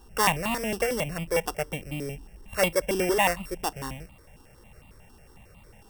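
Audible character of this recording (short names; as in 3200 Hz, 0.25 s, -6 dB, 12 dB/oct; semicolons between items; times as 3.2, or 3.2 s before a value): a buzz of ramps at a fixed pitch in blocks of 16 samples; notches that jump at a steady rate 11 Hz 580–1600 Hz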